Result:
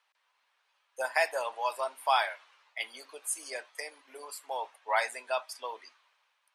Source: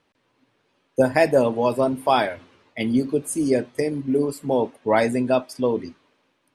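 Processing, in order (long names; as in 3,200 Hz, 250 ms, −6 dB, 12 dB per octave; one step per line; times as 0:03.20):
high-pass filter 820 Hz 24 dB per octave
level −3.5 dB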